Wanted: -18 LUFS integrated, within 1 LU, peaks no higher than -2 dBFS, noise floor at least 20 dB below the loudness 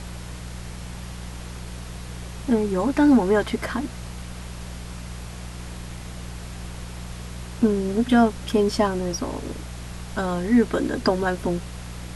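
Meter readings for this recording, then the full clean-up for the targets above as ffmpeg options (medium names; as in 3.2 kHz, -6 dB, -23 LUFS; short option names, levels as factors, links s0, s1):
hum 60 Hz; highest harmonic 180 Hz; hum level -33 dBFS; noise floor -36 dBFS; noise floor target -43 dBFS; loudness -22.5 LUFS; peak level -8.0 dBFS; loudness target -18.0 LUFS
-> -af "bandreject=f=60:t=h:w=4,bandreject=f=120:t=h:w=4,bandreject=f=180:t=h:w=4"
-af "afftdn=nr=7:nf=-36"
-af "volume=1.68"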